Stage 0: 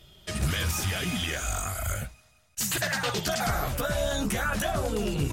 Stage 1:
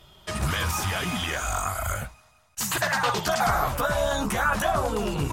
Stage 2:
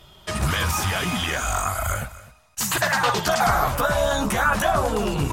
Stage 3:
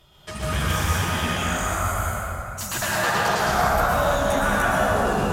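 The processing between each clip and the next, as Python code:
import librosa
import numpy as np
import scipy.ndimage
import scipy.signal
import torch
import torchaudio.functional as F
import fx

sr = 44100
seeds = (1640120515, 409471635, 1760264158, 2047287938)

y1 = fx.peak_eq(x, sr, hz=1000.0, db=11.5, octaves=1.0)
y2 = y1 + 10.0 ** (-18.0 / 20.0) * np.pad(y1, (int(254 * sr / 1000.0), 0))[:len(y1)]
y2 = y2 * librosa.db_to_amplitude(3.5)
y3 = fx.rev_plate(y2, sr, seeds[0], rt60_s=3.0, hf_ratio=0.5, predelay_ms=100, drr_db=-6.0)
y3 = y3 * librosa.db_to_amplitude(-7.0)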